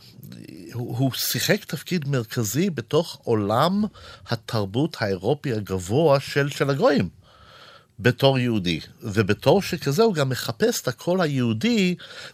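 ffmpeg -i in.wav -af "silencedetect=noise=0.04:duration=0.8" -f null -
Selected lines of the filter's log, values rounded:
silence_start: 7.07
silence_end: 8.00 | silence_duration: 0.93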